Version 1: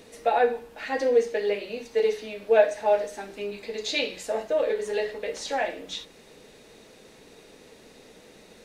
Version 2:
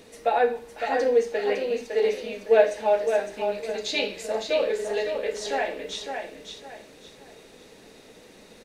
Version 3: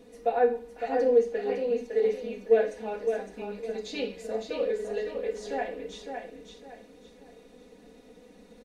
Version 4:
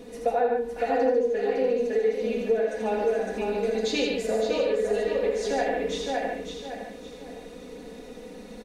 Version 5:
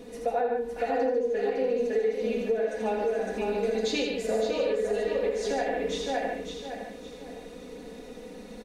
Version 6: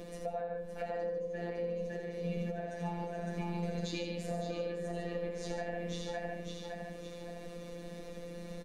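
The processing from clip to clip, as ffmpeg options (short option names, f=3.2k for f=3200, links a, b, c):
-af "aecho=1:1:558|1116|1674|2232:0.501|0.15|0.0451|0.0135"
-af "tiltshelf=f=860:g=5.5,aecho=1:1:4.1:0.88,volume=-8.5dB"
-filter_complex "[0:a]acompressor=threshold=-32dB:ratio=5,asplit=2[a][b];[b]aecho=0:1:81.63|145.8:0.562|0.501[c];[a][c]amix=inputs=2:normalize=0,volume=9dB"
-af "alimiter=limit=-17dB:level=0:latency=1:release=197,volume=-1dB"
-filter_complex "[0:a]afftfilt=real='hypot(re,im)*cos(PI*b)':imag='0':win_size=1024:overlap=0.75,acrossover=split=210[a][b];[b]acompressor=threshold=-54dB:ratio=2[c];[a][c]amix=inputs=2:normalize=0,volume=5.5dB"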